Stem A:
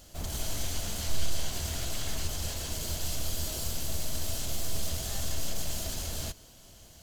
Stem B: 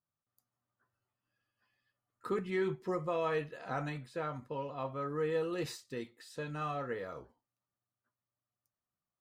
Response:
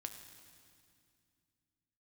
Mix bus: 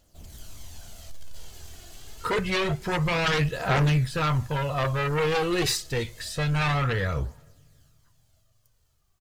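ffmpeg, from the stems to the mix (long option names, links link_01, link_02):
-filter_complex "[0:a]asoftclip=type=hard:threshold=-21.5dB,volume=-13dB,asplit=2[link_01][link_02];[link_02]volume=-10dB[link_03];[1:a]asubboost=boost=11.5:cutoff=88,aeval=exprs='0.0631*sin(PI/2*2.82*val(0)/0.0631)':channel_layout=same,adynamicequalizer=threshold=0.00794:dfrequency=1600:dqfactor=0.7:tfrequency=1600:tqfactor=0.7:attack=5:release=100:ratio=0.375:range=2.5:mode=boostabove:tftype=highshelf,volume=1dB,asplit=3[link_04][link_05][link_06];[link_05]volume=-18.5dB[link_07];[link_06]apad=whole_len=309858[link_08];[link_01][link_08]sidechaincompress=threshold=-32dB:ratio=8:attack=16:release=655[link_09];[2:a]atrim=start_sample=2205[link_10];[link_07][link_10]afir=irnorm=-1:irlink=0[link_11];[link_03]aecho=0:1:526|1052|1578|2104|2630|3156|3682|4208|4734:1|0.59|0.348|0.205|0.121|0.0715|0.0422|0.0249|0.0147[link_12];[link_09][link_04][link_11][link_12]amix=inputs=4:normalize=0,aphaser=in_gain=1:out_gain=1:delay=2.8:decay=0.41:speed=0.27:type=triangular"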